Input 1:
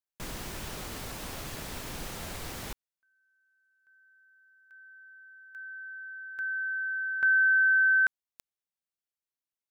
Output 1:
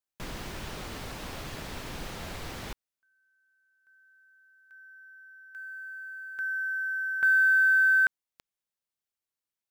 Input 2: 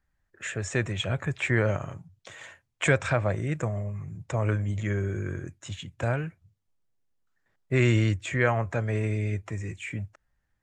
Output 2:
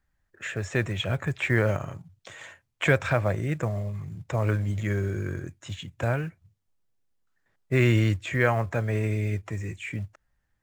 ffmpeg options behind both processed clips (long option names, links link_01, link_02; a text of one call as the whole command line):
ffmpeg -i in.wav -filter_complex "[0:a]acrossover=split=5400[link_01][link_02];[link_02]acompressor=threshold=-51dB:ratio=4:attack=1:release=60[link_03];[link_01][link_03]amix=inputs=2:normalize=0,asplit=2[link_04][link_05];[link_05]acrusher=bits=5:mode=log:mix=0:aa=0.000001,volume=-7.5dB[link_06];[link_04][link_06]amix=inputs=2:normalize=0,volume=-2dB" out.wav